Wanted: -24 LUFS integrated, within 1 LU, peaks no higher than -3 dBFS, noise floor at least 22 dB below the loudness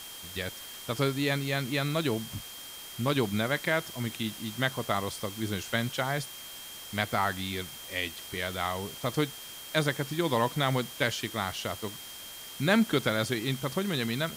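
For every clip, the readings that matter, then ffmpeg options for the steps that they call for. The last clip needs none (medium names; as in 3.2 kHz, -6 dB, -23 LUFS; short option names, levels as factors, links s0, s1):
steady tone 3.2 kHz; tone level -46 dBFS; noise floor -44 dBFS; noise floor target -53 dBFS; loudness -30.5 LUFS; peak level -11.0 dBFS; loudness target -24.0 LUFS
-> -af "bandreject=f=3200:w=30"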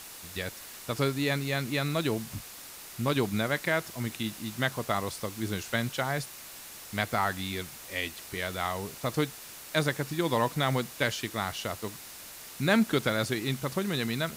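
steady tone not found; noise floor -46 dBFS; noise floor target -53 dBFS
-> -af "afftdn=nr=7:nf=-46"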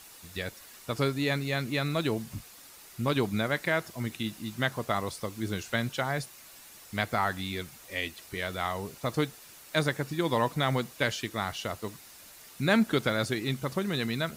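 noise floor -51 dBFS; noise floor target -53 dBFS
-> -af "afftdn=nr=6:nf=-51"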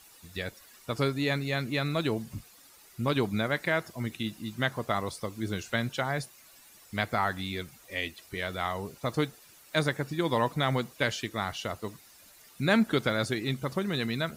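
noise floor -56 dBFS; loudness -31.0 LUFS; peak level -11.0 dBFS; loudness target -24.0 LUFS
-> -af "volume=2.24"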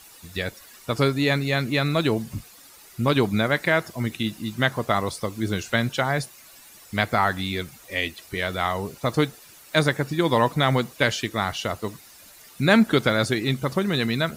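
loudness -24.0 LUFS; peak level -4.0 dBFS; noise floor -49 dBFS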